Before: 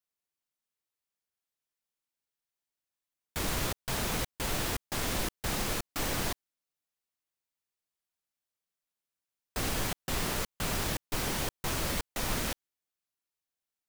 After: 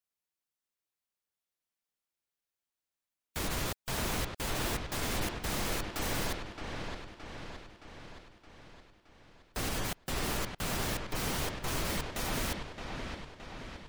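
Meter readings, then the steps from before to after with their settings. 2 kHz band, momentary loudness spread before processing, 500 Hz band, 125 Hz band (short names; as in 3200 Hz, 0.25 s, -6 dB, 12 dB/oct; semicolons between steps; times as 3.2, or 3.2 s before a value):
-1.0 dB, 4 LU, -0.5 dB, -0.5 dB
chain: spectral gate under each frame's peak -30 dB strong; dark delay 0.619 s, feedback 57%, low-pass 3800 Hz, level -5.5 dB; gain -2 dB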